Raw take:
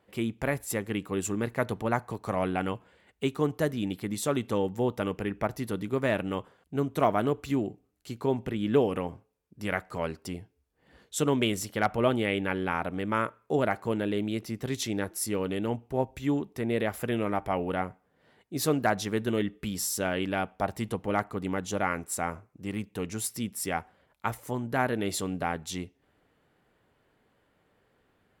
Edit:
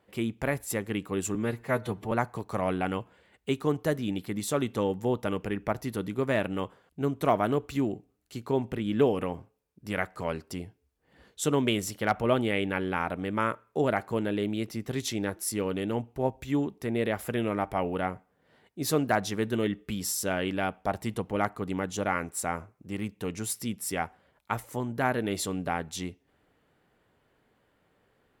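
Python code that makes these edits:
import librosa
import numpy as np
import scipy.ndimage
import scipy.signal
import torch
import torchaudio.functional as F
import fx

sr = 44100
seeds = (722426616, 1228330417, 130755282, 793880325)

y = fx.edit(x, sr, fx.stretch_span(start_s=1.35, length_s=0.51, factor=1.5), tone=tone)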